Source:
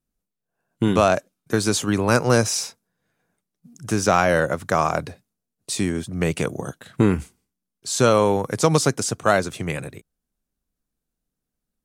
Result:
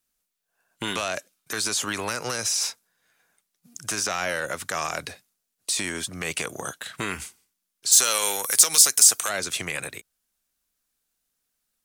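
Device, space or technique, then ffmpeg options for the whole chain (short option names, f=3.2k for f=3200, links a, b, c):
mastering chain: -filter_complex "[0:a]equalizer=f=150:t=o:w=0.77:g=-2,acrossover=split=590|1500[a][b][c];[a]acompressor=threshold=-20dB:ratio=4[d];[b]acompressor=threshold=-34dB:ratio=4[e];[c]acompressor=threshold=-28dB:ratio=4[f];[d][e][f]amix=inputs=3:normalize=0,acompressor=threshold=-27dB:ratio=1.5,asoftclip=type=tanh:threshold=-16.5dB,tiltshelf=f=670:g=-10,asoftclip=type=hard:threshold=-11dB,alimiter=level_in=15.5dB:limit=-1dB:release=50:level=0:latency=1,asplit=3[g][h][i];[g]afade=t=out:st=7.91:d=0.02[j];[h]aemphasis=mode=production:type=riaa,afade=t=in:st=7.91:d=0.02,afade=t=out:st=9.28:d=0.02[k];[i]afade=t=in:st=9.28:d=0.02[l];[j][k][l]amix=inputs=3:normalize=0,volume=-14.5dB"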